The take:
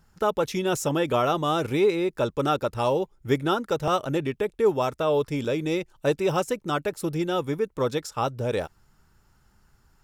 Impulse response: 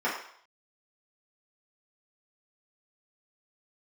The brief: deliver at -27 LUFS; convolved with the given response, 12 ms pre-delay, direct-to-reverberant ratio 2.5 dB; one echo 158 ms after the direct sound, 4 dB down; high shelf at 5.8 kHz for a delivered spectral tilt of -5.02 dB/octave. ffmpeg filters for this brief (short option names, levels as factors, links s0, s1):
-filter_complex "[0:a]highshelf=f=5800:g=-3,aecho=1:1:158:0.631,asplit=2[s0][s1];[1:a]atrim=start_sample=2205,adelay=12[s2];[s1][s2]afir=irnorm=-1:irlink=0,volume=0.188[s3];[s0][s3]amix=inputs=2:normalize=0,volume=0.631"